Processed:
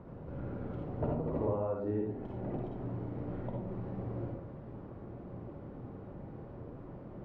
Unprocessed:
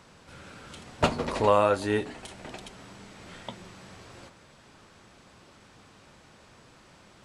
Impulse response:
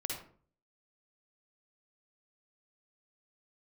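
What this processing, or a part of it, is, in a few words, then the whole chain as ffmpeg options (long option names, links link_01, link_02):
television next door: -filter_complex "[0:a]acompressor=threshold=-44dB:ratio=3,lowpass=530[link_01];[1:a]atrim=start_sample=2205[link_02];[link_01][link_02]afir=irnorm=-1:irlink=0,volume=10dB"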